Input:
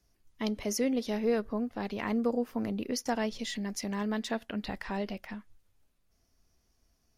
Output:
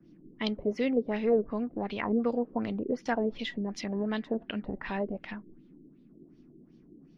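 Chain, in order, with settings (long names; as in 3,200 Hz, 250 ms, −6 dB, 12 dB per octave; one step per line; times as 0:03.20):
noise in a band 140–340 Hz −57 dBFS
auto-filter low-pass sine 2.7 Hz 380–3,700 Hz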